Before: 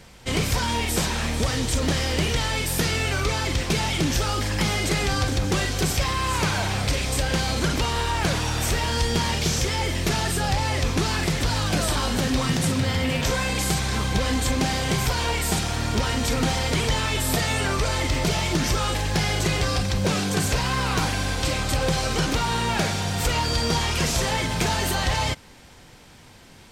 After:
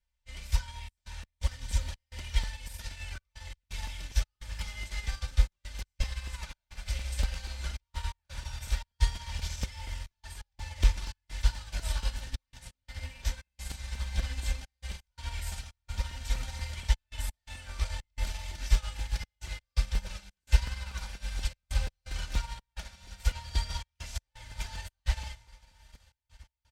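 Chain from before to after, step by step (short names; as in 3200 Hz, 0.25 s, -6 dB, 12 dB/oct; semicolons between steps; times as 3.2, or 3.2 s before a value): tilt -2 dB/oct; notch 1200 Hz, Q 17; comb 3.4 ms, depth 74%; diffused feedback echo 1.099 s, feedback 72%, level -10 dB; on a send at -8.5 dB: reverb RT60 0.95 s, pre-delay 3 ms; on the sum: step gate "xxxxx.x.xxx.x" 85 bpm -24 dB; passive tone stack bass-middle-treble 10-0-10; crackling interface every 0.24 s, samples 128, repeat, from 0.99; upward expander 2.5:1, over -38 dBFS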